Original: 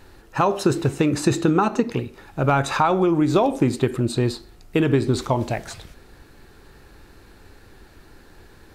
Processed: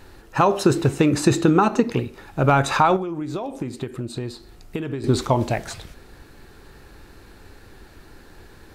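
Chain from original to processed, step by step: 2.96–5.04 s: compression 5:1, threshold -29 dBFS, peak gain reduction 14 dB; trim +2 dB

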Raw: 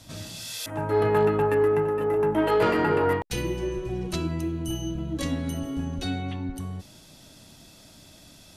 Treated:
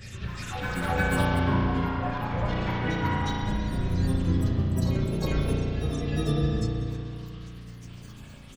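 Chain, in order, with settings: spectral selection erased 5.51–5.81 s, 200–1600 Hz; in parallel at 0 dB: compression, threshold -30 dBFS, peak gain reduction 12 dB; on the sum: static phaser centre 2.1 kHz, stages 8; three bands offset in time mids, lows, highs 50/630 ms, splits 570/4600 Hz; tremolo 4.2 Hz, depth 93%; phase shifter stages 6, 0.82 Hz, lowest notch 420–1300 Hz; granulator, pitch spread up and down by 12 st; spring tank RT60 2.6 s, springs 34 ms, chirp 35 ms, DRR -3.5 dB; harmony voices +7 st -9 dB; on a send: reverse echo 359 ms -6.5 dB; on the sum: trim +3 dB

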